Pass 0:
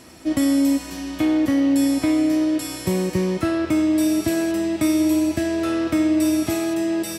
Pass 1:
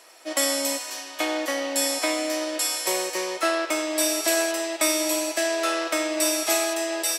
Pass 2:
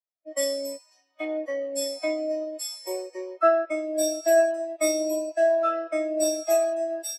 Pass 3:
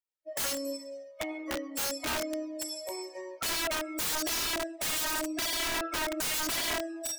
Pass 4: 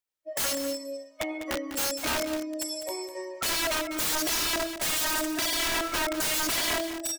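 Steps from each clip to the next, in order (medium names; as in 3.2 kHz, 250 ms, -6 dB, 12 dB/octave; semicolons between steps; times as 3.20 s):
dynamic bell 6.8 kHz, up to +5 dB, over -44 dBFS, Q 0.76; high-pass 510 Hz 24 dB/octave; upward expansion 1.5:1, over -42 dBFS; trim +6 dB
peaking EQ 140 Hz -5.5 dB 0.84 oct; spectral contrast expander 2.5:1
algorithmic reverb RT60 1.2 s, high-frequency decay 0.55×, pre-delay 40 ms, DRR 6 dB; touch-sensitive flanger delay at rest 2.2 ms, full sweep at -19 dBFS; integer overflow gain 26.5 dB
delay 200 ms -11 dB; trim +3.5 dB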